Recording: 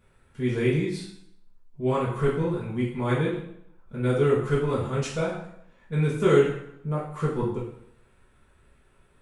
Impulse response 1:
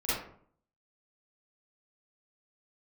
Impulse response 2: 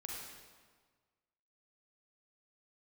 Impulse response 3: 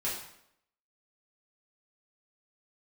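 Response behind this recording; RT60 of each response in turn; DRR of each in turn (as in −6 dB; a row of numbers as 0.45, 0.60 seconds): 3; 0.55, 1.5, 0.75 seconds; −13.0, −2.5, −9.0 decibels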